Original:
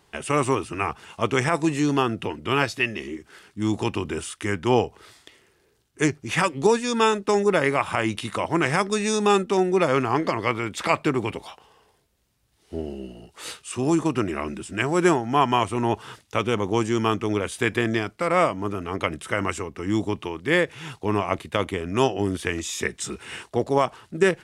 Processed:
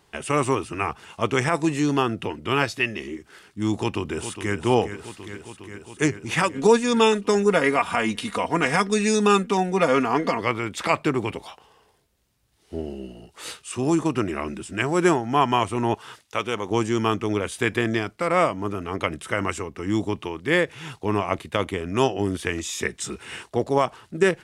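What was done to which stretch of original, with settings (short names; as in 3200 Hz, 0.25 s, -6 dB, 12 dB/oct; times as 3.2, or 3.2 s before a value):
3.77–4.55 echo throw 0.41 s, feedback 80%, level -10 dB
6.54–10.41 comb 4.2 ms
15.94–16.71 low shelf 350 Hz -10 dB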